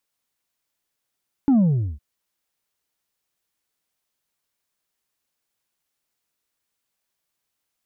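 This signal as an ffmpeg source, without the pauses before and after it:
ffmpeg -f lavfi -i "aevalsrc='0.211*clip((0.51-t)/0.41,0,1)*tanh(1.41*sin(2*PI*290*0.51/log(65/290)*(exp(log(65/290)*t/0.51)-1)))/tanh(1.41)':duration=0.51:sample_rate=44100" out.wav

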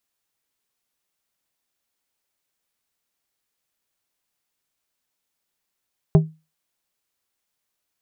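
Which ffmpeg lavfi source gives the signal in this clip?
ffmpeg -f lavfi -i "aevalsrc='0.473*pow(10,-3*t/0.27)*sin(2*PI*158*t)+0.211*pow(10,-3*t/0.142)*sin(2*PI*395*t)+0.0944*pow(10,-3*t/0.102)*sin(2*PI*632*t)+0.0422*pow(10,-3*t/0.088)*sin(2*PI*790*t)+0.0188*pow(10,-3*t/0.073)*sin(2*PI*1027*t)':duration=0.89:sample_rate=44100" out.wav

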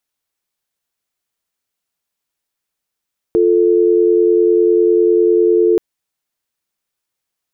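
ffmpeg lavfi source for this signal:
ffmpeg -f lavfi -i "aevalsrc='0.266*(sin(2*PI*350*t)+sin(2*PI*440*t))':duration=2.43:sample_rate=44100" out.wav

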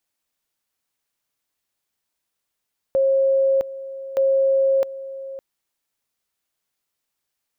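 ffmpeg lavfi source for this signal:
ffmpeg -f lavfi -i "aevalsrc='pow(10,(-14.5-15.5*gte(mod(t,1.22),0.66))/20)*sin(2*PI*540*t)':duration=2.44:sample_rate=44100" out.wav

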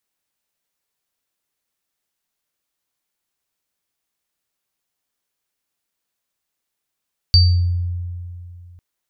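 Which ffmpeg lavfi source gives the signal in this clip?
ffmpeg -f lavfi -i "aevalsrc='0.398*pow(10,-3*t/2.63)*sin(2*PI*88*t)+0.376*pow(10,-3*t/0.47)*sin(2*PI*4620*t)':duration=1.45:sample_rate=44100" out.wav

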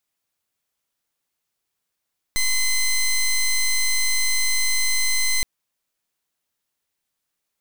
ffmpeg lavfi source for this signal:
ffmpeg -f lavfi -i "aevalsrc='0.106*(2*lt(mod(2050*t,1),0.13)-1)':duration=3.07:sample_rate=44100" out.wav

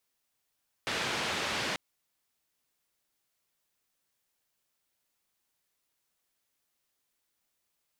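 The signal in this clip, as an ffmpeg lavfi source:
ffmpeg -f lavfi -i "anoisesrc=color=white:duration=0.89:sample_rate=44100:seed=1,highpass=frequency=88,lowpass=frequency=3400,volume=-20.3dB" out.wav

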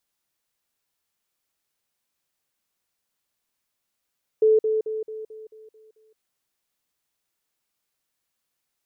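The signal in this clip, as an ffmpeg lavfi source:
ffmpeg -f lavfi -i "aevalsrc='pow(10,(-13.5-6*floor(t/0.22))/20)*sin(2*PI*436*t)*clip(min(mod(t,0.22),0.17-mod(t,0.22))/0.005,0,1)':duration=1.76:sample_rate=44100" out.wav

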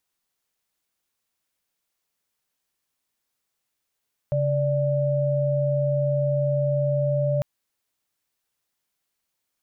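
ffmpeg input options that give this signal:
ffmpeg -f lavfi -i "aevalsrc='0.075*(sin(2*PI*138.59*t)+sin(2*PI*587.33*t))':duration=3.1:sample_rate=44100" out.wav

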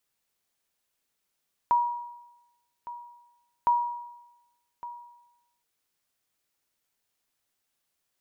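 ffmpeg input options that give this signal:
ffmpeg -f lavfi -i "aevalsrc='0.15*(sin(2*PI*958*mod(t,1.96))*exp(-6.91*mod(t,1.96)/0.97)+0.15*sin(2*PI*958*max(mod(t,1.96)-1.16,0))*exp(-6.91*max(mod(t,1.96)-1.16,0)/0.97))':duration=3.92:sample_rate=44100" out.wav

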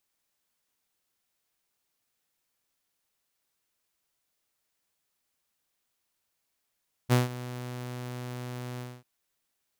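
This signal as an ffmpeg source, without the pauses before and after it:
ffmpeg -f lavfi -i "aevalsrc='0.168*(2*mod(124*t,1)-1)':duration=1.943:sample_rate=44100,afade=type=in:duration=0.035,afade=type=out:start_time=0.035:duration=0.156:silence=0.133,afade=type=out:start_time=1.7:duration=0.243" out.wav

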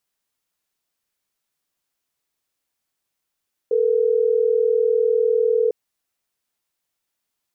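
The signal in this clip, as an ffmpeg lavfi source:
ffmpeg -f lavfi -i "aevalsrc='0.126*(sin(2*PI*440*t)+sin(2*PI*480*t))*clip(min(mod(t,6),2-mod(t,6))/0.005,0,1)':duration=3.12:sample_rate=44100" out.wav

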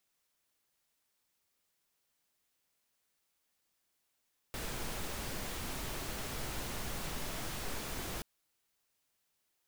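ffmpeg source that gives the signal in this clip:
ffmpeg -f lavfi -i "anoisesrc=color=pink:amplitude=0.0543:duration=3.68:sample_rate=44100:seed=1" out.wav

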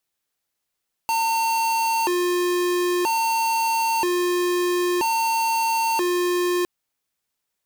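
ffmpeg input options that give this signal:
ffmpeg -f lavfi -i "aevalsrc='0.0841*(2*lt(mod((631*t+276/0.51*(0.5-abs(mod(0.51*t,1)-0.5))),1),0.5)-1)':duration=5.56:sample_rate=44100" out.wav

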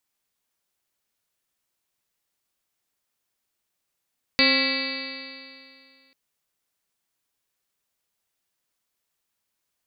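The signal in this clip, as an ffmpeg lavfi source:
ffmpeg -f lavfi -i "aevalsrc='0.0708*pow(10,-3*t/2.32)*sin(2*PI*265.36*t)+0.0531*pow(10,-3*t/2.32)*sin(2*PI*532.85*t)+0.0126*pow(10,-3*t/2.32)*sin(2*PI*804.6*t)+0.0237*pow(10,-3*t/2.32)*sin(2*PI*1082.65*t)+0.0188*pow(10,-3*t/2.32)*sin(2*PI*1368.99*t)+0.02*pow(10,-3*t/2.32)*sin(2*PI*1665.48*t)+0.075*pow(10,-3*t/2.32)*sin(2*PI*1973.9*t)+0.0708*pow(10,-3*t/2.32)*sin(2*PI*2295.87*t)+0.0668*pow(10,-3*t/2.32)*sin(2*PI*2632.91*t)+0.0188*pow(10,-3*t/2.32)*sin(2*PI*2986.4*t)+0.0188*pow(10,-3*t/2.32)*sin(2*PI*3357.57*t)+0.0531*pow(10,-3*t/2.32)*sin(2*PI*3747.55*t)+0.0631*pow(10,-3*t/2.32)*sin(2*PI*4157.33*t)+0.1*pow(10,-3*t/2.32)*sin(2*PI*4587.82*t)':duration=1.74:sample_rate=44100" out.wav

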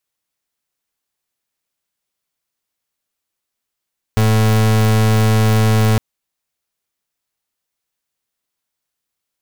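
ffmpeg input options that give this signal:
ffmpeg -f lavfi -i "aevalsrc='0.237*(2*lt(mod(109*t,1),0.36)-1)':duration=1.81:sample_rate=44100" out.wav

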